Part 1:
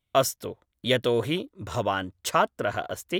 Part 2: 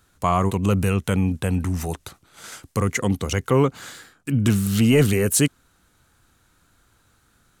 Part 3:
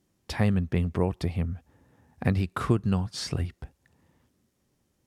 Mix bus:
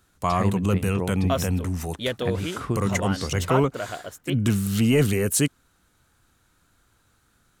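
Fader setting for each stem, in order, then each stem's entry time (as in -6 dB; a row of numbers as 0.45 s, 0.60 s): -4.0 dB, -3.0 dB, -3.0 dB; 1.15 s, 0.00 s, 0.00 s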